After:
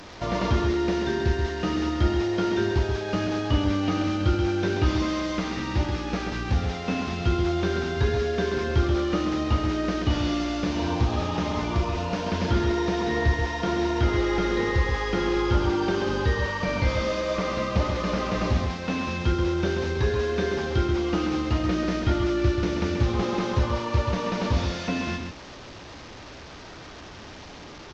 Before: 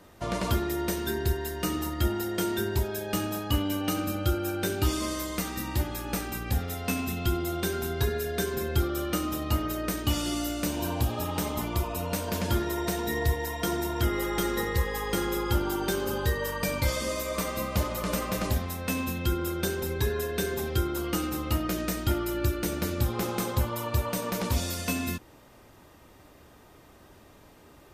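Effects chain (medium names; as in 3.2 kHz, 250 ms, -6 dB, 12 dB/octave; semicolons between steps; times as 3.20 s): one-bit delta coder 32 kbps, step -40.5 dBFS; delay 132 ms -6 dB; trim +3.5 dB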